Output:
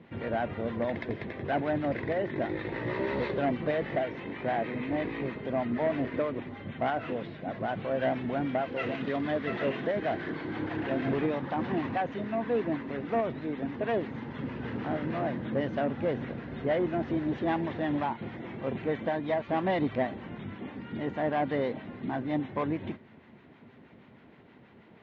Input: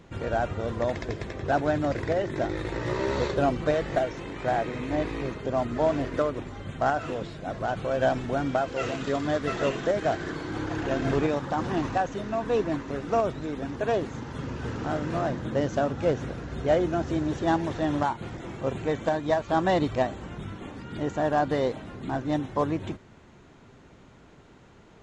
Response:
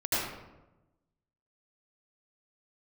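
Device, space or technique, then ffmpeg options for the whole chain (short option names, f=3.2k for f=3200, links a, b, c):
guitar amplifier with harmonic tremolo: -filter_complex "[0:a]acrossover=split=790[a][b];[a]aeval=exprs='val(0)*(1-0.5/2+0.5/2*cos(2*PI*6.3*n/s))':c=same[c];[b]aeval=exprs='val(0)*(1-0.5/2-0.5/2*cos(2*PI*6.3*n/s))':c=same[d];[c][d]amix=inputs=2:normalize=0,asoftclip=type=tanh:threshold=-21.5dB,highpass=110,equalizer=f=230:t=q:w=4:g=6,equalizer=f=1.3k:t=q:w=4:g=-4,equalizer=f=2k:t=q:w=4:g=5,lowpass=f=3.5k:w=0.5412,lowpass=f=3.5k:w=1.3066"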